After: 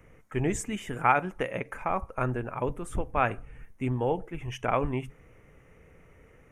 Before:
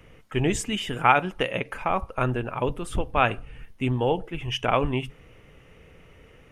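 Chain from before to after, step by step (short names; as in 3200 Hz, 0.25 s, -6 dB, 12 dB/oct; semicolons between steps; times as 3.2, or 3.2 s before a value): band shelf 3700 Hz -10.5 dB 1.1 oct; gain -4 dB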